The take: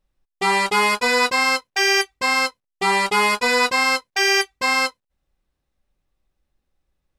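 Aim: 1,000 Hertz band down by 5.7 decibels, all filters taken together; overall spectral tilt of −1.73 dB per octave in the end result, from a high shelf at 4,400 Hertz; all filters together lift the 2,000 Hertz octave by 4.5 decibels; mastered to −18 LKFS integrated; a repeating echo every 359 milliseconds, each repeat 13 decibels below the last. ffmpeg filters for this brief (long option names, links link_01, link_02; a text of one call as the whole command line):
ffmpeg -i in.wav -af "equalizer=frequency=1000:width_type=o:gain=-8.5,equalizer=frequency=2000:width_type=o:gain=5.5,highshelf=frequency=4400:gain=7.5,aecho=1:1:359|718|1077:0.224|0.0493|0.0108,volume=-3dB" out.wav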